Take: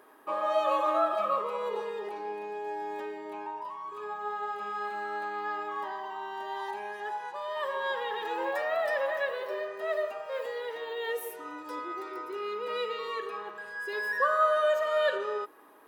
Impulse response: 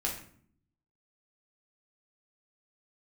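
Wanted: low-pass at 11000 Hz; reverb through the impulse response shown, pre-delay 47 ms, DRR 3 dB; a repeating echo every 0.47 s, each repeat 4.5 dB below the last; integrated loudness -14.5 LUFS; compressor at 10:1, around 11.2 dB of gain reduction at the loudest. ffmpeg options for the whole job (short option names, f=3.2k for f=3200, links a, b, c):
-filter_complex "[0:a]lowpass=11k,acompressor=threshold=-33dB:ratio=10,aecho=1:1:470|940|1410|1880|2350|2820|3290|3760|4230:0.596|0.357|0.214|0.129|0.0772|0.0463|0.0278|0.0167|0.01,asplit=2[a][b];[1:a]atrim=start_sample=2205,adelay=47[c];[b][c]afir=irnorm=-1:irlink=0,volume=-7.5dB[d];[a][d]amix=inputs=2:normalize=0,volume=19dB"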